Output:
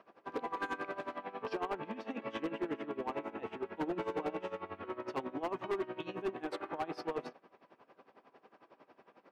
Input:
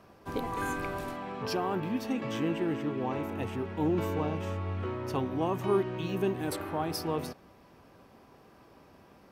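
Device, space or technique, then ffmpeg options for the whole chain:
helicopter radio: -filter_complex "[0:a]asettb=1/sr,asplit=3[s0][s1][s2];[s0]atrim=end=3.784[s3];[s1]atrim=start=3.78:end=4.65,asetpts=PTS-STARTPTS,afade=t=in:d=0.004:c=qsin,afade=t=out:st=0.866:d=0.004:c=qsin,asplit=2[s4][s5];[s5]adelay=16,volume=0.447[s6];[s4][s6]amix=inputs=2:normalize=0,atrim=end_sample=38367[s7];[s2]atrim=start=4.646[s8];[s3][s7]acrossfade=d=0.004:c1=hsin:c2=qsin[s9];[s9][s8]acrossfade=d=0.004:c1=qsin:c2=hsin,highpass=340,lowpass=2900,aeval=exprs='val(0)*pow(10,-18*(0.5-0.5*cos(2*PI*11*n/s))/20)':c=same,asoftclip=type=hard:threshold=0.0251,volume=1.26"

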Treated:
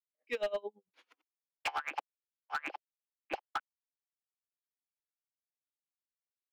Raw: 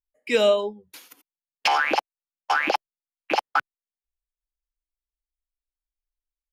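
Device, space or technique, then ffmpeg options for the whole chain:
helicopter radio: -af "highpass=360,lowpass=2800,aeval=exprs='val(0)*pow(10,-26*(0.5-0.5*cos(2*PI*9*n/s))/20)':c=same,asoftclip=type=hard:threshold=0.0944,volume=0.422"

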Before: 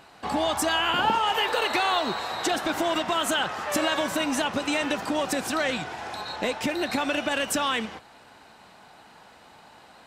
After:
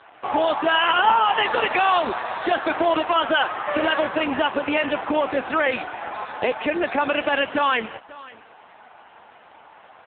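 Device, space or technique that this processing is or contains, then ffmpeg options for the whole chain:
satellite phone: -filter_complex "[0:a]asplit=3[s0][s1][s2];[s0]afade=t=out:st=0.57:d=0.02[s3];[s1]equalizer=f=9300:w=0.75:g=5.5,afade=t=in:st=0.57:d=0.02,afade=t=out:st=2.75:d=0.02[s4];[s2]afade=t=in:st=2.75:d=0.02[s5];[s3][s4][s5]amix=inputs=3:normalize=0,highpass=340,lowpass=3100,aecho=1:1:539:0.0944,volume=2.51" -ar 8000 -c:a libopencore_amrnb -b:a 5900

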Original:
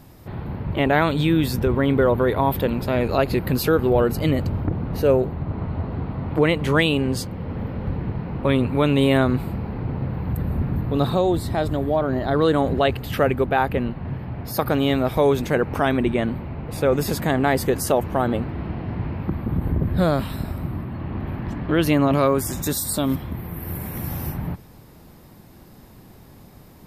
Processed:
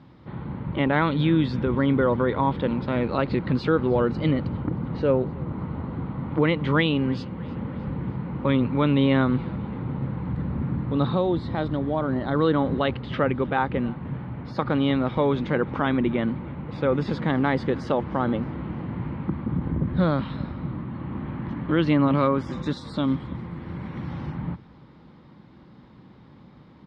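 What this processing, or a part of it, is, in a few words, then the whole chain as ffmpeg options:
frequency-shifting delay pedal into a guitar cabinet: -filter_complex "[0:a]asplit=5[s0][s1][s2][s3][s4];[s1]adelay=311,afreqshift=-41,volume=0.0708[s5];[s2]adelay=622,afreqshift=-82,volume=0.0376[s6];[s3]adelay=933,afreqshift=-123,volume=0.02[s7];[s4]adelay=1244,afreqshift=-164,volume=0.0106[s8];[s0][s5][s6][s7][s8]amix=inputs=5:normalize=0,highpass=86,equalizer=f=94:t=q:w=4:g=-9,equalizer=f=410:t=q:w=4:g=-6,equalizer=f=680:t=q:w=4:g=-10,equalizer=f=1700:t=q:w=4:g=-4,equalizer=f=2600:t=q:w=4:g=-7,lowpass=f=3500:w=0.5412,lowpass=f=3500:w=1.3066"

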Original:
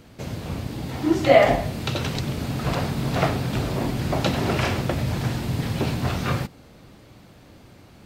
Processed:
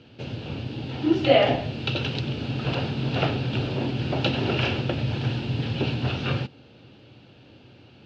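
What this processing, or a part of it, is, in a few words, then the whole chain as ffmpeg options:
guitar cabinet: -af "highpass=110,equalizer=f=120:t=q:w=4:g=4,equalizer=f=180:t=q:w=4:g=-7,equalizer=f=670:t=q:w=4:g=-5,equalizer=f=1100:t=q:w=4:g=-10,equalizer=f=2000:t=q:w=4:g=-9,equalizer=f=2800:t=q:w=4:g=8,lowpass=f=4400:w=0.5412,lowpass=f=4400:w=1.3066"

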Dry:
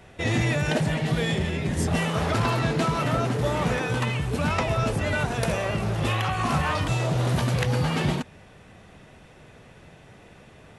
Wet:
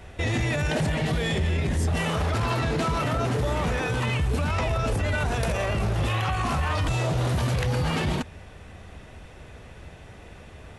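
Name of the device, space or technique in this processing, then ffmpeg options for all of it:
car stereo with a boomy subwoofer: -af "lowshelf=f=100:t=q:w=1.5:g=7.5,alimiter=limit=0.0944:level=0:latency=1:release=25,volume=1.41"

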